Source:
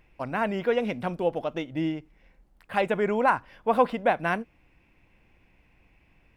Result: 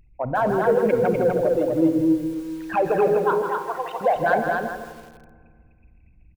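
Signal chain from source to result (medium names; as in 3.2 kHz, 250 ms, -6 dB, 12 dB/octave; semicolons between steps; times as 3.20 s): resonances exaggerated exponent 3; 3.17–4.01 s: high-pass 1.5 kHz 12 dB/octave; in parallel at +1.5 dB: peak limiter -20 dBFS, peak gain reduction 7.5 dB; on the sum: saturation -11 dBFS, distortion -23 dB; delay 249 ms -3.5 dB; on a send at -11.5 dB: reverberation RT60 2.0 s, pre-delay 33 ms; on the sum: bit-crushed delay 160 ms, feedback 35%, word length 7-bit, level -7 dB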